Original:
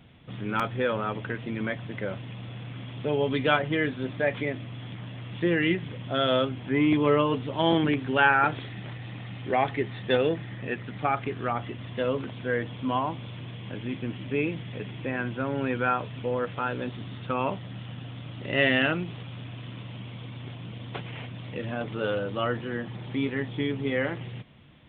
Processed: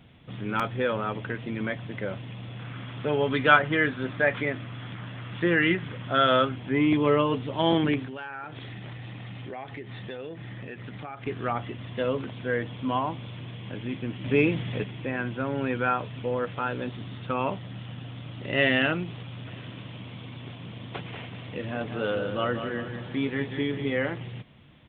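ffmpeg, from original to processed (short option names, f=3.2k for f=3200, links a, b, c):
-filter_complex "[0:a]asettb=1/sr,asplit=3[a][b][c];[a]atrim=end=2.594[d];[b]atrim=start=2.59:end=6.56,asetpts=PTS-STARTPTS,afade=t=in:d=0.004:c=qsin,afade=t=out:st=3.966:d=0.004:c=qsin,equalizer=f=1.4k:w=1.5:g=8.5[e];[c]atrim=start=6.556[f];[d][e]acrossfade=d=0.004:c1=hsin:c2=qsin[g];[g][f]acrossfade=d=0.004:c1=qsin:c2=hsin,asettb=1/sr,asplit=3[h][i][j];[h]atrim=end=8.054[k];[i]atrim=start=8.05:end=11.27,asetpts=PTS-STARTPTS,afade=t=in:d=0.004:c=qsin,afade=t=out:st=3.216:d=0.004:c=qsin,acompressor=threshold=-35dB:ratio=6:attack=3.2:release=140:knee=1:detection=peak[l];[j]atrim=start=11.266[m];[k][l]acrossfade=d=0.004:c1=hsin:c2=qsin[n];[n][m]acrossfade=d=0.004:c1=qsin:c2=hsin,asettb=1/sr,asplit=3[o][p][q];[o]atrim=end=14.244[r];[p]atrim=start=14.24:end=14.84,asetpts=PTS-STARTPTS,afade=t=in:d=0.004:c=qsin,afade=t=out:st=0.596:d=0.004:c=qsin,acontrast=41[s];[q]atrim=start=14.836[t];[r][s]acrossfade=d=0.004:c1=hsin:c2=qsin[u];[u][t]acrossfade=d=0.004:c1=qsin:c2=hsin,asplit=3[v][w][x];[v]afade=t=out:st=19.46:d=0.02[y];[w]aecho=1:1:188|376|564|752|940:0.398|0.179|0.0806|0.0363|0.0163,afade=t=in:st=19.46:d=0.02,afade=t=out:st=23.85:d=0.02[z];[x]afade=t=in:st=23.85:d=0.02[aa];[y][z][aa]amix=inputs=3:normalize=0"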